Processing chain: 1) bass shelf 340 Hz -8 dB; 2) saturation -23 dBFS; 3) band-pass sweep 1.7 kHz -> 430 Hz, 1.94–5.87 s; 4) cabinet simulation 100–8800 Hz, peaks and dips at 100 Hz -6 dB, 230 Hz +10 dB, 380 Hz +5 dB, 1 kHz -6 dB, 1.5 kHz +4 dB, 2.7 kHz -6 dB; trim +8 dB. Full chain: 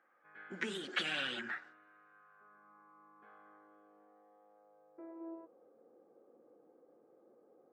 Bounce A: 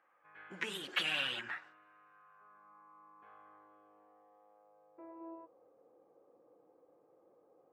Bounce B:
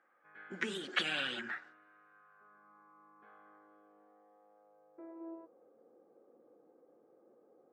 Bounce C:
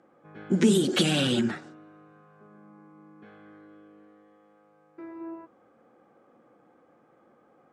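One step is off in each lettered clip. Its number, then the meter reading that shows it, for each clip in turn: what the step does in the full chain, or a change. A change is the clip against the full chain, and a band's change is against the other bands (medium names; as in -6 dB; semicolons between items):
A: 4, momentary loudness spread change +1 LU; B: 2, distortion -17 dB; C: 3, 2 kHz band -16.5 dB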